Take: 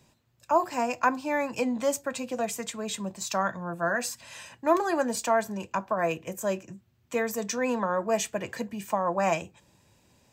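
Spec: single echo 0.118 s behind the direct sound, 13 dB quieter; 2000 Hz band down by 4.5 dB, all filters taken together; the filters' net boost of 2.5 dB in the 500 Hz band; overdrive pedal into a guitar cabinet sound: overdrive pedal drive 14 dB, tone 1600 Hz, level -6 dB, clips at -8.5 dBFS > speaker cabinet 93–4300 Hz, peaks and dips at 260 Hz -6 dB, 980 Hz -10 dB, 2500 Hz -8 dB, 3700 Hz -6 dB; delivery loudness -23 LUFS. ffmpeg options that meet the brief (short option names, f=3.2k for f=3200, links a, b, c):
-filter_complex "[0:a]equalizer=f=500:t=o:g=4.5,equalizer=f=2k:t=o:g=-3.5,aecho=1:1:118:0.224,asplit=2[a][b];[b]highpass=f=720:p=1,volume=14dB,asoftclip=type=tanh:threshold=-8.5dB[c];[a][c]amix=inputs=2:normalize=0,lowpass=f=1.6k:p=1,volume=-6dB,highpass=93,equalizer=f=260:t=q:w=4:g=-6,equalizer=f=980:t=q:w=4:g=-10,equalizer=f=2.5k:t=q:w=4:g=-8,equalizer=f=3.7k:t=q:w=4:g=-6,lowpass=f=4.3k:w=0.5412,lowpass=f=4.3k:w=1.3066,volume=2.5dB"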